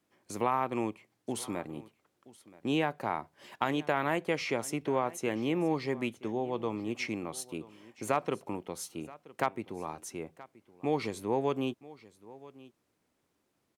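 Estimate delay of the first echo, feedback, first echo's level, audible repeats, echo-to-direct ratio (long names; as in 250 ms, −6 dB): 976 ms, repeats not evenly spaced, −20.0 dB, 1, −20.0 dB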